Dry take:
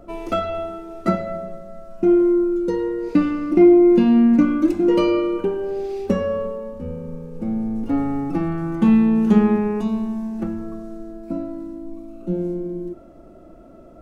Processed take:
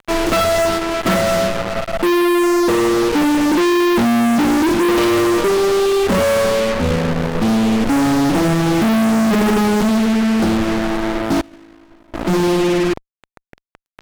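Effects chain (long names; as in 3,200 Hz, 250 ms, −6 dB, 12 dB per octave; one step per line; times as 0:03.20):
fuzz pedal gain 42 dB, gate −35 dBFS
0:11.41–0:12.14: noise gate −13 dBFS, range −27 dB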